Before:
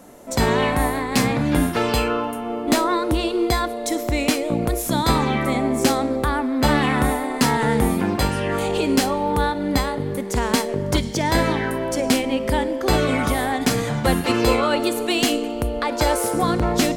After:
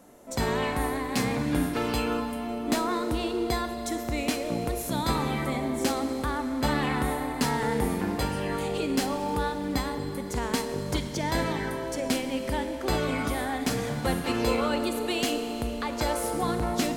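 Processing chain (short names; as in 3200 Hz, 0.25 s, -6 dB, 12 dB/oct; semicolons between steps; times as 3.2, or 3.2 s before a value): Schroeder reverb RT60 3.7 s, combs from 30 ms, DRR 8.5 dB; gain -8.5 dB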